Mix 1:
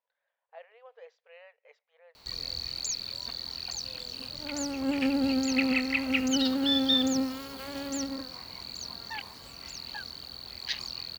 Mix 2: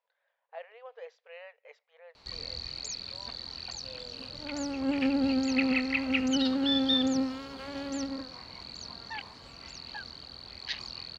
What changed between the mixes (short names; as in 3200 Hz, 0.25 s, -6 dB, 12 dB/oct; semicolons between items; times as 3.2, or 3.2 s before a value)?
speech +5.0 dB; background: add air absorption 97 m